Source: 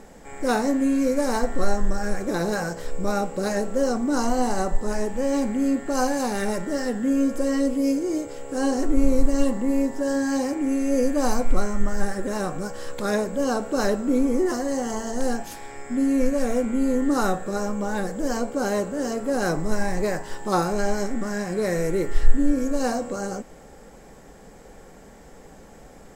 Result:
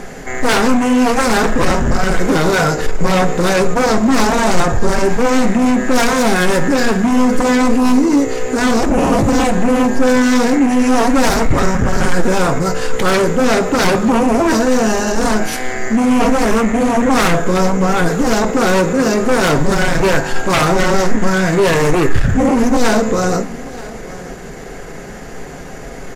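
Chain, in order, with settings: peaking EQ 2.3 kHz +7 dB 0.92 oct; pitch shift -1.5 st; sine folder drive 19 dB, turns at -2 dBFS; delay 927 ms -19 dB; reverberation RT60 0.50 s, pre-delay 7 ms, DRR 9.5 dB; trim -8 dB

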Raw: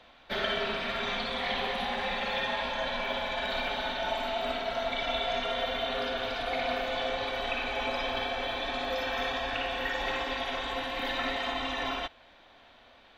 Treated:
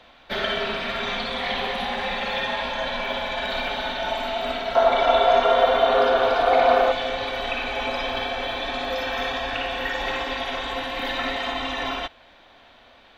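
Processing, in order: 4.75–6.92 s: high-order bell 680 Hz +10.5 dB 2.4 oct; trim +5 dB

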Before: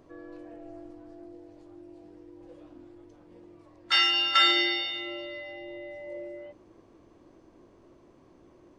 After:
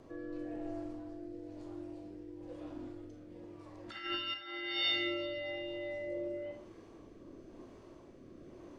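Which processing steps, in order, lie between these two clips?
low-pass that closes with the level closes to 1.8 kHz, closed at -20.5 dBFS; de-hum 80.12 Hz, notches 38; compressor with a negative ratio -34 dBFS, ratio -0.5; rotary cabinet horn 1 Hz; Schroeder reverb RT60 0.46 s, combs from 27 ms, DRR 5 dB; trim +1 dB

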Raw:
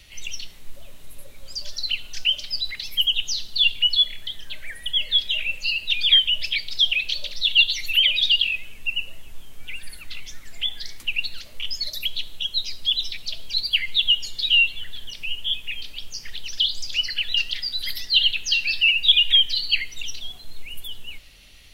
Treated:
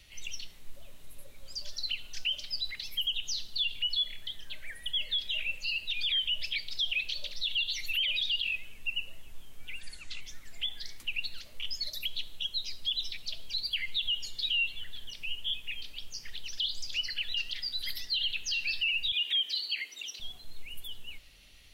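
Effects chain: 19.12–20.20 s: high-pass 270 Hz 24 dB/octave; peak limiter -15 dBFS, peak gain reduction 11 dB; 9.81–10.21 s: resonant low-pass 7.1 kHz, resonance Q 3; trim -7.5 dB

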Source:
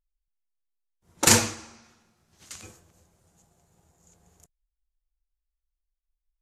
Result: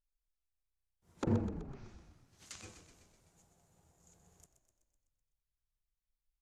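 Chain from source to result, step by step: low-pass that closes with the level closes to 380 Hz, closed at -27 dBFS; on a send: frequency-shifting echo 126 ms, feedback 60%, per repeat -31 Hz, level -10 dB; on the sum: trim -6 dB

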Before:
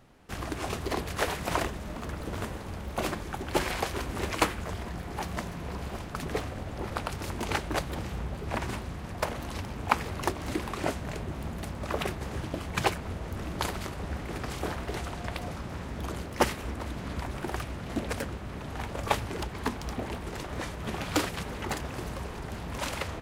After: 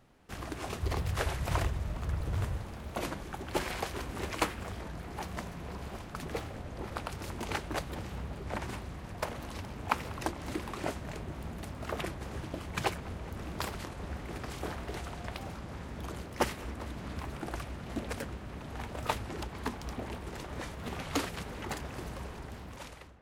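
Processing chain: fade out at the end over 0.92 s; 0.81–2.65 s: resonant low shelf 160 Hz +9.5 dB, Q 1.5; filtered feedback delay 209 ms, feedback 85%, low-pass 4.6 kHz, level -21 dB; warped record 33 1/3 rpm, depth 160 cents; trim -5 dB

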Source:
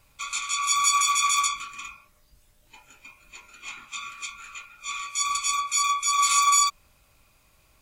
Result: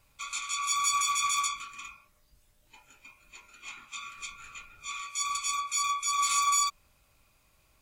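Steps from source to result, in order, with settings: in parallel at -6 dB: saturation -19.5 dBFS, distortion -13 dB; 4.15–4.86 s: on the sum: added noise brown -50 dBFS; trim -8.5 dB

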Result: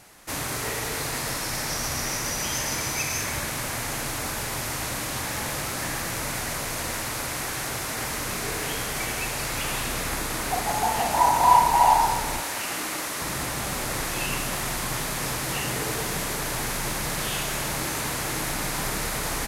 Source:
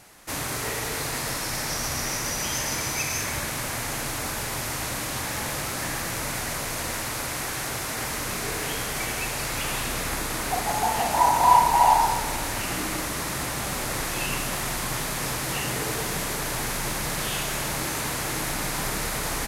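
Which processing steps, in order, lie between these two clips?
12.40–13.21 s: high-pass 440 Hz 6 dB/octave

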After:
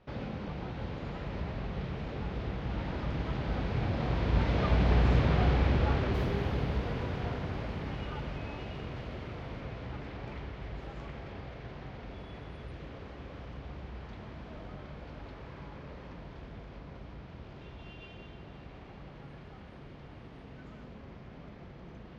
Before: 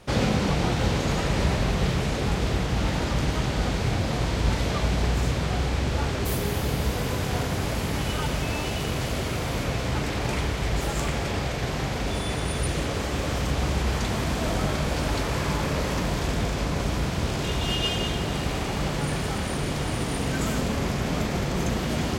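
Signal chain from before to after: Doppler pass-by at 5.29 s, 9 m/s, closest 6.9 m; in parallel at 0 dB: compression, threshold -51 dBFS, peak gain reduction 27 dB; on the sum: distance through air 280 m

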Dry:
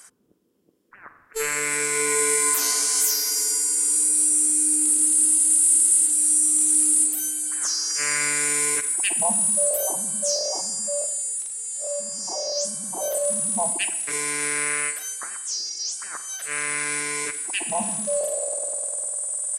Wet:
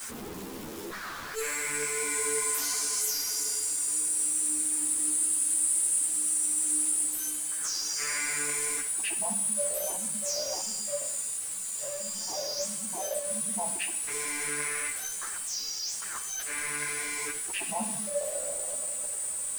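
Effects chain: jump at every zero crossing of -23 dBFS; three-phase chorus; trim -7.5 dB

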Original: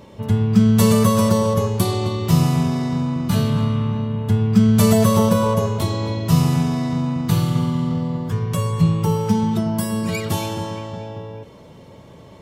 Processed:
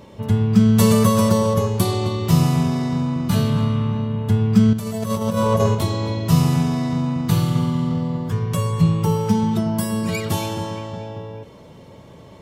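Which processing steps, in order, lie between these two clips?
4.73–5.75 s: compressor with a negative ratio -19 dBFS, ratio -0.5

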